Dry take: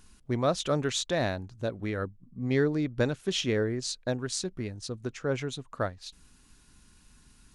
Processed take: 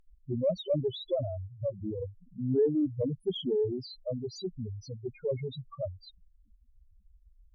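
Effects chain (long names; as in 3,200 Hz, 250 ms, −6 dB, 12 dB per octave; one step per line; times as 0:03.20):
spectral peaks only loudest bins 2
harmonic generator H 4 −39 dB, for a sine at −22 dBFS
level +3.5 dB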